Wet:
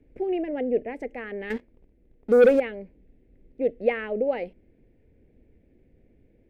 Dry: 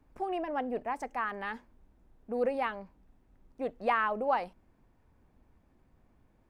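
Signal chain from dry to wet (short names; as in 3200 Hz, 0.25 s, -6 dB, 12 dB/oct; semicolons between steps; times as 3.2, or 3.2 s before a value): EQ curve 190 Hz 0 dB, 480 Hz +7 dB, 1100 Hz -25 dB, 2100 Hz +1 dB, 6100 Hz -18 dB; 1.5–2.6 sample leveller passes 2; gain +5.5 dB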